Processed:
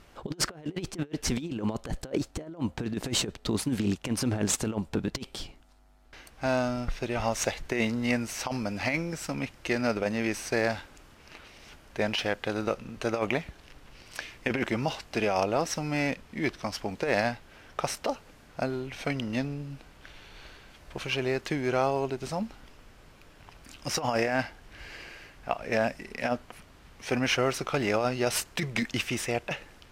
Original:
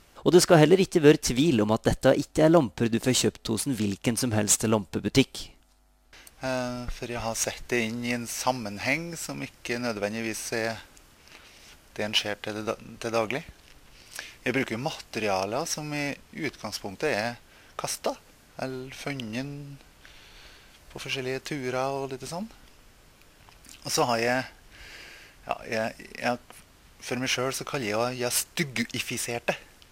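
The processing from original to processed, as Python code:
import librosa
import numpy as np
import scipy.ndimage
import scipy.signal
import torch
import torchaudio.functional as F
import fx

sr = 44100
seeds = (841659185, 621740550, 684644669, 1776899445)

y = fx.high_shelf(x, sr, hz=4500.0, db=-10.0)
y = fx.over_compress(y, sr, threshold_db=-27.0, ratio=-0.5)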